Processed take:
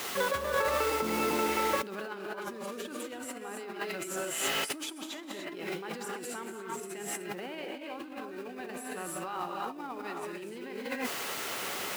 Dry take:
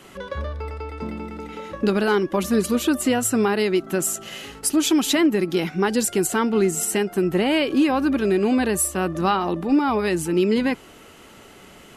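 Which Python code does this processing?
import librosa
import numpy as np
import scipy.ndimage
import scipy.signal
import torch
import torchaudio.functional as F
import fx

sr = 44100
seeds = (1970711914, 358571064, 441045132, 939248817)

y = fx.rev_gated(x, sr, seeds[0], gate_ms=340, shape='rising', drr_db=0.0)
y = fx.dmg_noise_colour(y, sr, seeds[1], colour='white', level_db=-39.0)
y = fx.over_compress(y, sr, threshold_db=-30.0, ratio=-1.0)
y = fx.highpass(y, sr, hz=780.0, slope=6)
y = fx.high_shelf(y, sr, hz=3500.0, db=-11.5)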